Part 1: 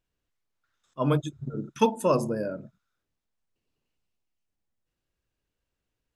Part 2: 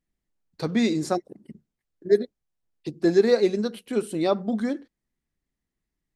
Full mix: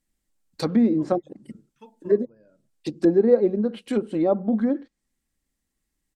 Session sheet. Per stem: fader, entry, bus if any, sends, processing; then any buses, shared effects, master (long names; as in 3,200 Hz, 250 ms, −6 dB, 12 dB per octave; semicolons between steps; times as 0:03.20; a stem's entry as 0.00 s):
−13.5 dB, 0.00 s, no send, low-pass filter 4,600 Hz 12 dB per octave; automatic ducking −13 dB, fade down 1.80 s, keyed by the second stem
+2.5 dB, 0.00 s, no send, treble cut that deepens with the level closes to 720 Hz, closed at −20.5 dBFS; high-shelf EQ 4,200 Hz +7.5 dB; comb filter 3.7 ms, depth 30%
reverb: not used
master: parametric band 8,100 Hz +4.5 dB 0.33 octaves